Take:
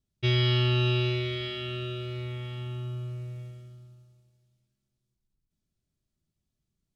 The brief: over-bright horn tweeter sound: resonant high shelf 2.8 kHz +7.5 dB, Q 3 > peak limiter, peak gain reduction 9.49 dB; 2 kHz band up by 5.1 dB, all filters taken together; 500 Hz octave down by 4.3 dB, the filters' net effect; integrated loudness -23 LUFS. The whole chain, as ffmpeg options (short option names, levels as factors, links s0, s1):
-af "equalizer=f=500:t=o:g=-7.5,equalizer=f=2000:t=o:g=8.5,highshelf=f=2800:t=q:w=3:g=7.5,volume=1.5,alimiter=limit=0.188:level=0:latency=1"